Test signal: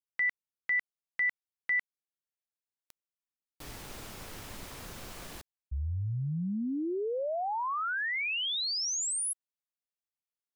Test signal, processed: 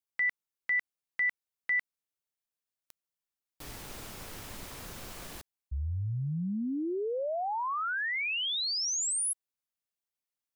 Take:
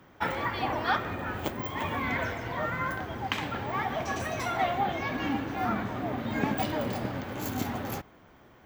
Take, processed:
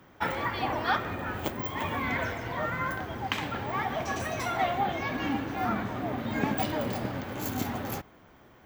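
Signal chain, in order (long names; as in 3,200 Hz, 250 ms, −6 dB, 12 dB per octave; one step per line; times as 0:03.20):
high-shelf EQ 8,600 Hz +3 dB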